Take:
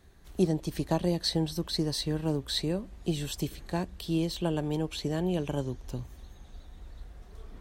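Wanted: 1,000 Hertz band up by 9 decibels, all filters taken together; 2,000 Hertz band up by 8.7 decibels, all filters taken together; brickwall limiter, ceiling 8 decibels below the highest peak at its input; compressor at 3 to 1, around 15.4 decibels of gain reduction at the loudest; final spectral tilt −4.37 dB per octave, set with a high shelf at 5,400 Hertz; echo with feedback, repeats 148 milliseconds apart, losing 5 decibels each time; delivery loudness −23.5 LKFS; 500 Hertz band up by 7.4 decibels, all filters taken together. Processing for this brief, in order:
parametric band 500 Hz +7.5 dB
parametric band 1,000 Hz +7 dB
parametric band 2,000 Hz +9 dB
high-shelf EQ 5,400 Hz −3.5 dB
downward compressor 3 to 1, threshold −38 dBFS
brickwall limiter −29 dBFS
repeating echo 148 ms, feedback 56%, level −5 dB
level +16.5 dB

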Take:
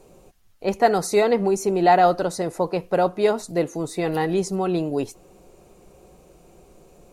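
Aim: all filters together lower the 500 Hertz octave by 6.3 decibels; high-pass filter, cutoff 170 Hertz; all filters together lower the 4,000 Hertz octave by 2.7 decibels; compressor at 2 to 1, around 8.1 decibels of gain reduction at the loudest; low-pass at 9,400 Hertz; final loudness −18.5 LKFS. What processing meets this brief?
high-pass filter 170 Hz
low-pass filter 9,400 Hz
parametric band 500 Hz −8.5 dB
parametric band 4,000 Hz −3 dB
downward compressor 2 to 1, threshold −30 dBFS
level +13 dB

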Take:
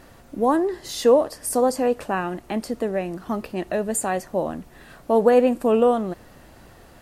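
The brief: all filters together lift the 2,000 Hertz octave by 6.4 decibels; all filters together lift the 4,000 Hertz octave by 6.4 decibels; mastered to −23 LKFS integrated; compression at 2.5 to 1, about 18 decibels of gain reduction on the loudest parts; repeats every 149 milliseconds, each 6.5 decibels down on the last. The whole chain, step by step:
parametric band 2,000 Hz +7 dB
parametric band 4,000 Hz +6 dB
downward compressor 2.5 to 1, threshold −40 dBFS
repeating echo 149 ms, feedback 47%, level −6.5 dB
level +13 dB

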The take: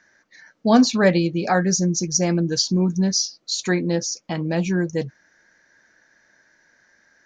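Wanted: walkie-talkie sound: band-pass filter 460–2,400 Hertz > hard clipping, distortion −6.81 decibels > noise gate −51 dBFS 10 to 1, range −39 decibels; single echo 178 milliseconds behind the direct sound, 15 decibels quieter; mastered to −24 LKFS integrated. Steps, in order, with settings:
band-pass filter 460–2,400 Hz
single-tap delay 178 ms −15 dB
hard clipping −22.5 dBFS
noise gate −51 dBFS 10 to 1, range −39 dB
level +6.5 dB

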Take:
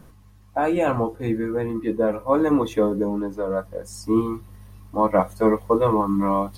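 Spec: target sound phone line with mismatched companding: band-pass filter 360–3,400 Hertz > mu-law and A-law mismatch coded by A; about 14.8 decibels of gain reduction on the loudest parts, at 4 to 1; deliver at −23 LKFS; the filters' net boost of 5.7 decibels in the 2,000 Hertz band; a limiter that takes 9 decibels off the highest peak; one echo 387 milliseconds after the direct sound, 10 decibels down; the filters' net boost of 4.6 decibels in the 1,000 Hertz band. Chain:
parametric band 1,000 Hz +4 dB
parametric band 2,000 Hz +6.5 dB
downward compressor 4 to 1, threshold −30 dBFS
brickwall limiter −26 dBFS
band-pass filter 360–3,400 Hz
single-tap delay 387 ms −10 dB
mu-law and A-law mismatch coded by A
level +17 dB

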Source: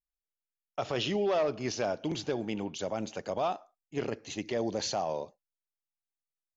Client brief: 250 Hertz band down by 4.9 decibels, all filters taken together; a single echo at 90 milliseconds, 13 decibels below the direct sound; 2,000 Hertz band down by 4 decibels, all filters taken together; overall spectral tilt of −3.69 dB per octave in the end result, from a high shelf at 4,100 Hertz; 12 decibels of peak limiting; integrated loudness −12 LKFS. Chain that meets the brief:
parametric band 250 Hz −7 dB
parametric band 2,000 Hz −7.5 dB
high-shelf EQ 4,100 Hz +7.5 dB
brickwall limiter −30.5 dBFS
single-tap delay 90 ms −13 dB
level +28 dB

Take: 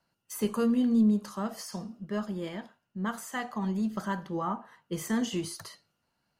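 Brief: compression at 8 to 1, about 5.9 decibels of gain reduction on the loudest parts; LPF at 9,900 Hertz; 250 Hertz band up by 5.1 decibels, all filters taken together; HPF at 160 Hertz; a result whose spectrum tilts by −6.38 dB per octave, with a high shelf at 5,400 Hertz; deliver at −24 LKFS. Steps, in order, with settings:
high-pass filter 160 Hz
low-pass filter 9,900 Hz
parametric band 250 Hz +7 dB
high-shelf EQ 5,400 Hz −3.5 dB
downward compressor 8 to 1, threshold −21 dBFS
level +6 dB

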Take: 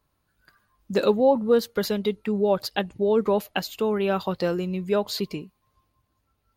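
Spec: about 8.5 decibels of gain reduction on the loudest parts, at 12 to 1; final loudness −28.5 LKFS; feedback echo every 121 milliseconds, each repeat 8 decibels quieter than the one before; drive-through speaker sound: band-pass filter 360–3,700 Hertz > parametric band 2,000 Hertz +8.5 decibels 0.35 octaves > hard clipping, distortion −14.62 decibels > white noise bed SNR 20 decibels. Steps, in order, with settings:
downward compressor 12 to 1, threshold −22 dBFS
band-pass filter 360–3,700 Hz
parametric band 2,000 Hz +8.5 dB 0.35 octaves
repeating echo 121 ms, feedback 40%, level −8 dB
hard clipping −23 dBFS
white noise bed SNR 20 dB
level +2.5 dB

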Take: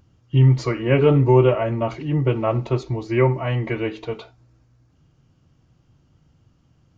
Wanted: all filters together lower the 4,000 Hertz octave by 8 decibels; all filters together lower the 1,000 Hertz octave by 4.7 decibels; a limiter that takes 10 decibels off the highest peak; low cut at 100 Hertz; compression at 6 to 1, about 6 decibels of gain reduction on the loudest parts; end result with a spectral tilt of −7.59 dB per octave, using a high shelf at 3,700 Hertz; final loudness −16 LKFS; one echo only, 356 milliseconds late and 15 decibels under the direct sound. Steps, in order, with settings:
high-pass filter 100 Hz
parametric band 1,000 Hz −5 dB
high-shelf EQ 3,700 Hz −7 dB
parametric band 4,000 Hz −8 dB
downward compressor 6 to 1, threshold −17 dBFS
brickwall limiter −20 dBFS
single-tap delay 356 ms −15 dB
level +13 dB

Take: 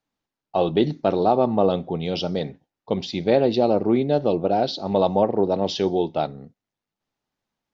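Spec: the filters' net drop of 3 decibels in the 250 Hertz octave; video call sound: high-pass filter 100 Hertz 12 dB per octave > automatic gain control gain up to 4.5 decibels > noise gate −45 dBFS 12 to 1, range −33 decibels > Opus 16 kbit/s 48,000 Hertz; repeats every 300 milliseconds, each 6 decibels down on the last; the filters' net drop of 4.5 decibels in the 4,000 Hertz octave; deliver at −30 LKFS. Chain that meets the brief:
high-pass filter 100 Hz 12 dB per octave
parametric band 250 Hz −4 dB
parametric band 4,000 Hz −5.5 dB
repeating echo 300 ms, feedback 50%, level −6 dB
automatic gain control gain up to 4.5 dB
noise gate −45 dBFS 12 to 1, range −33 dB
level −7.5 dB
Opus 16 kbit/s 48,000 Hz

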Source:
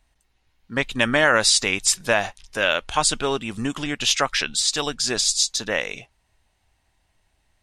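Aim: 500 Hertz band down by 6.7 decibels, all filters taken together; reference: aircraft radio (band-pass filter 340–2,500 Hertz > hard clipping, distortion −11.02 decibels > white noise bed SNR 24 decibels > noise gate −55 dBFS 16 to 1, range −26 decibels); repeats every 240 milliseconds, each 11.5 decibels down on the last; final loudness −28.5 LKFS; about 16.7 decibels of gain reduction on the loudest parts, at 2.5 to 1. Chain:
parametric band 500 Hz −7.5 dB
downward compressor 2.5 to 1, threshold −41 dBFS
band-pass filter 340–2,500 Hz
repeating echo 240 ms, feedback 27%, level −11.5 dB
hard clipping −32.5 dBFS
white noise bed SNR 24 dB
noise gate −55 dBFS 16 to 1, range −26 dB
level +14 dB

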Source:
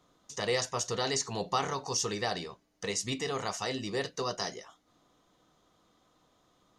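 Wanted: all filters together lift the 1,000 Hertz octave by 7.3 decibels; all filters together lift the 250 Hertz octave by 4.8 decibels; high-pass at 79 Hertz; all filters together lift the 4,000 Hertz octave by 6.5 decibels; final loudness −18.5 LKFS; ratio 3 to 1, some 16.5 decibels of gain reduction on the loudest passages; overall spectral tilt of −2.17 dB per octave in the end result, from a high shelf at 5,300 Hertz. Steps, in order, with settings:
high-pass filter 79 Hz
parametric band 250 Hz +5.5 dB
parametric band 1,000 Hz +8.5 dB
parametric band 4,000 Hz +4 dB
high-shelf EQ 5,300 Hz +8 dB
downward compressor 3 to 1, threshold −41 dBFS
level +21.5 dB

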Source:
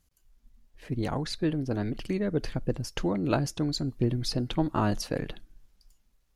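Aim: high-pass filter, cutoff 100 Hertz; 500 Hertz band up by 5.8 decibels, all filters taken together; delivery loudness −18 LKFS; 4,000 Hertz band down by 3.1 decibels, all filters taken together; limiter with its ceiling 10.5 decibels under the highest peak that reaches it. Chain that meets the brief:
high-pass filter 100 Hz
parametric band 500 Hz +7.5 dB
parametric band 4,000 Hz −4 dB
level +13 dB
brickwall limiter −6 dBFS

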